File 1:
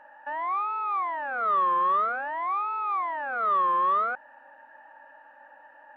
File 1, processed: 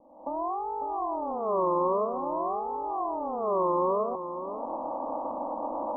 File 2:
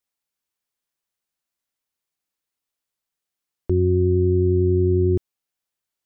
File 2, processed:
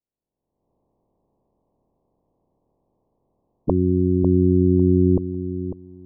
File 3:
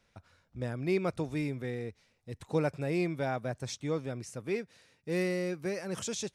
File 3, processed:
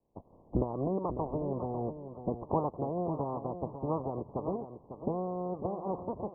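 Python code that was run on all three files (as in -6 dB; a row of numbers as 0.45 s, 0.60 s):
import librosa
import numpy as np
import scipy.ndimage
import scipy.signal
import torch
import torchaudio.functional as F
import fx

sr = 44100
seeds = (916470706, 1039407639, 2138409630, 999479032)

y = fx.spec_clip(x, sr, under_db=21)
y = fx.recorder_agc(y, sr, target_db=-20.5, rise_db_per_s=42.0, max_gain_db=30)
y = fx.env_lowpass(y, sr, base_hz=550.0, full_db=-17.5)
y = scipy.signal.sosfilt(scipy.signal.butter(16, 1100.0, 'lowpass', fs=sr, output='sos'), y)
y = fx.echo_feedback(y, sr, ms=549, feedback_pct=18, wet_db=-10)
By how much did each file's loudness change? -4.0 LU, +0.5 LU, -1.0 LU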